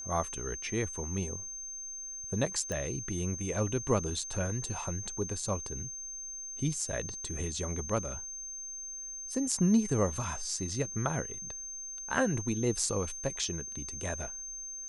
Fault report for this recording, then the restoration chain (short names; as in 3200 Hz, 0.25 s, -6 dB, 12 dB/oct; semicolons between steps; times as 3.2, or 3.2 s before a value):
tone 6300 Hz -39 dBFS
2.72 pop -21 dBFS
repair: de-click; notch 6300 Hz, Q 30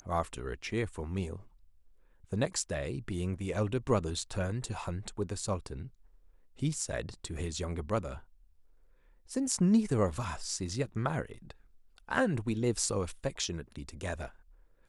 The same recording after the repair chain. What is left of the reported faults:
none